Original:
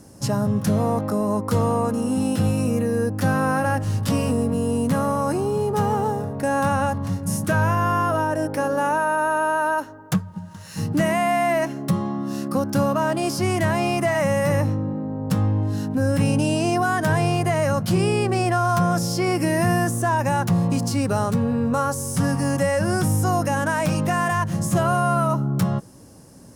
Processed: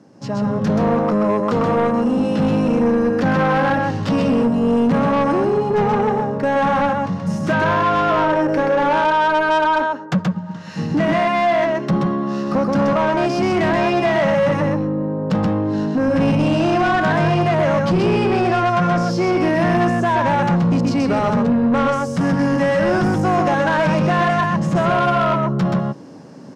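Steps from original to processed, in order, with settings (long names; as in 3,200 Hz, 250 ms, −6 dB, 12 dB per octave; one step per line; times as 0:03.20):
high-pass filter 150 Hz 24 dB per octave
high-frequency loss of the air 180 metres
on a send: single-tap delay 128 ms −3.5 dB
on the sum: automatic gain control gain up to 10 dB
soft clipping −11.5 dBFS, distortion −13 dB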